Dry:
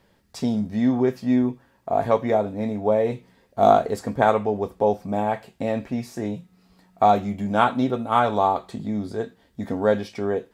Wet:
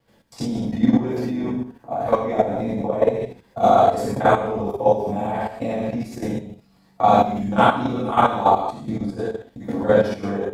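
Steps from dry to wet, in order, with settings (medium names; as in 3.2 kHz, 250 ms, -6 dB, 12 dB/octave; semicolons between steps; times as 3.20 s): time reversed locally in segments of 40 ms; gated-style reverb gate 270 ms falling, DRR -8 dB; level held to a coarse grid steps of 11 dB; trim -2 dB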